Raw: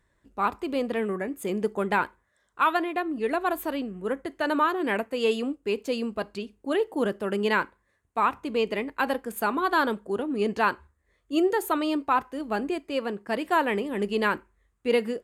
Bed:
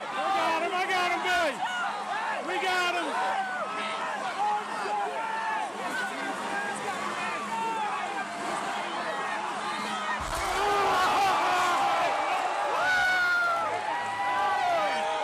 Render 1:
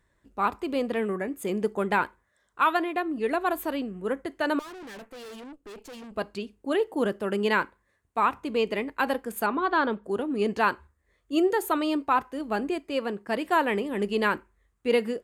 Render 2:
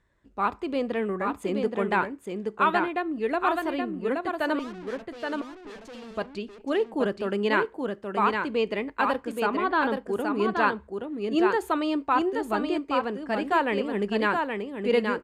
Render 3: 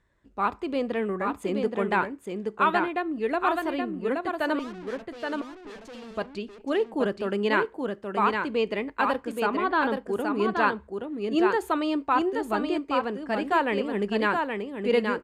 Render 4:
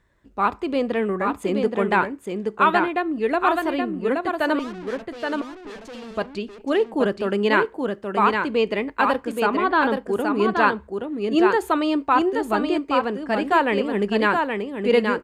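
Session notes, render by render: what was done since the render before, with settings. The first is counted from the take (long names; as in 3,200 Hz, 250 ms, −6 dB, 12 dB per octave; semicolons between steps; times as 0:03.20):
0:04.59–0:06.14: tube saturation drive 41 dB, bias 0.75; 0:09.46–0:10.04: high-frequency loss of the air 160 metres
high-frequency loss of the air 61 metres; single-tap delay 824 ms −4.5 dB
no processing that can be heard
level +5 dB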